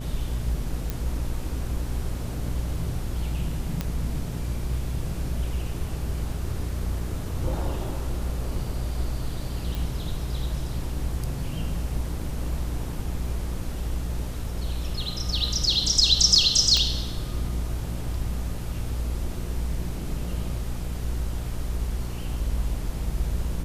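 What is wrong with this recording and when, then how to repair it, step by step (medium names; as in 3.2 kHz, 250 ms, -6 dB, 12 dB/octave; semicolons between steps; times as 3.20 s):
buzz 60 Hz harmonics 11 -31 dBFS
0.90 s: pop
3.81 s: pop -13 dBFS
9.75 s: pop
16.77 s: pop -10 dBFS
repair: de-click; de-hum 60 Hz, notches 11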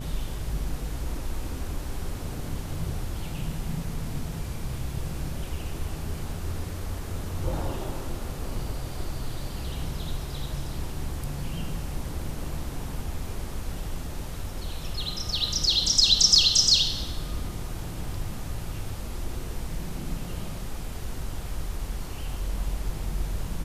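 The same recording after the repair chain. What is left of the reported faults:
nothing left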